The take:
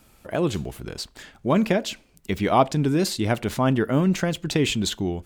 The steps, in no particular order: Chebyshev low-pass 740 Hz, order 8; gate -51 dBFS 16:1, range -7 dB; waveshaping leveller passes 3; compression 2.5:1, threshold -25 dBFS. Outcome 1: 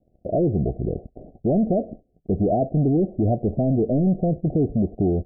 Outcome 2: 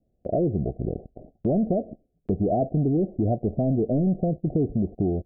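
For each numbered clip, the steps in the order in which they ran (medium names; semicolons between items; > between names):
compression > waveshaping leveller > gate > Chebyshev low-pass; waveshaping leveller > Chebyshev low-pass > compression > gate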